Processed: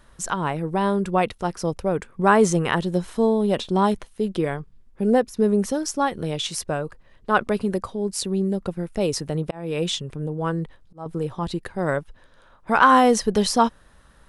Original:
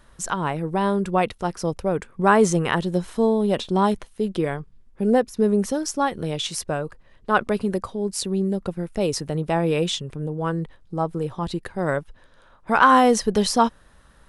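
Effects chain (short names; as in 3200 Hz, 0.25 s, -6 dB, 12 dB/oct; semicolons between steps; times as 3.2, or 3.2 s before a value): 9.03–11.06 auto swell 0.383 s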